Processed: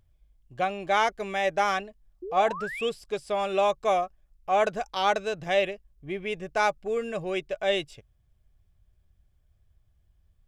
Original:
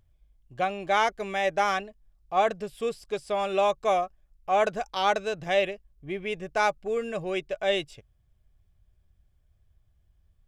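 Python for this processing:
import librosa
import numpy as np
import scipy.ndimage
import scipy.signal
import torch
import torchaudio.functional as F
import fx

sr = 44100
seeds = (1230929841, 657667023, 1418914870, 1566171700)

y = fx.spec_paint(x, sr, seeds[0], shape='rise', start_s=2.22, length_s=0.68, low_hz=340.0, high_hz=3500.0, level_db=-36.0)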